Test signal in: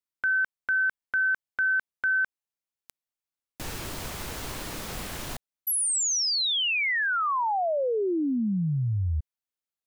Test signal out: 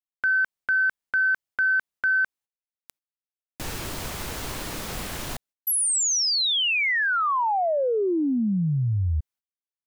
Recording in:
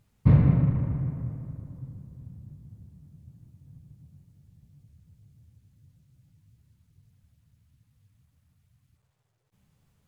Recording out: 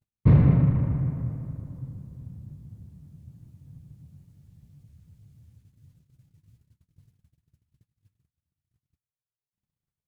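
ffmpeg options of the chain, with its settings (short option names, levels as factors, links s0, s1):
-af "agate=range=0.0224:threshold=0.00141:ratio=3:release=103:detection=rms,asoftclip=type=tanh:threshold=0.299,volume=1.41"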